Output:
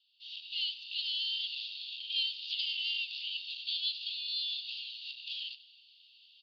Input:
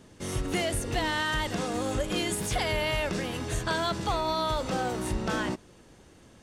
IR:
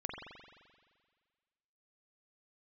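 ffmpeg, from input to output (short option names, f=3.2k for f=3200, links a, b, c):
-filter_complex "[0:a]dynaudnorm=f=200:g=3:m=14dB,asoftclip=type=tanh:threshold=-15dB,asuperpass=centerf=3600:order=12:qfactor=1.8,asplit=2[a][b];[b]aecho=0:1:94|188|282|376:0.112|0.0595|0.0315|0.0167[c];[a][c]amix=inputs=2:normalize=0,volume=-5.5dB"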